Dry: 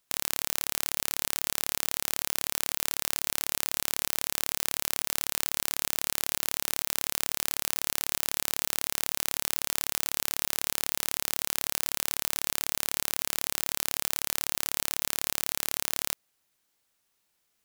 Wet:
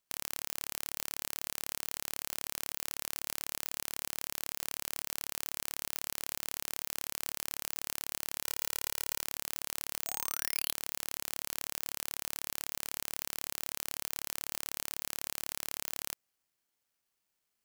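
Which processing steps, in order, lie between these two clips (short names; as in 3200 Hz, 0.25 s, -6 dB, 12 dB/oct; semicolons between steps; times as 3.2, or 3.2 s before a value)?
8.43–9.22 comb 2.1 ms, depth 90%; 10.06–10.71 bell 640 Hz -> 3400 Hz +15 dB 0.27 oct; careless resampling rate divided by 6×, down filtered, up zero stuff; gain -8 dB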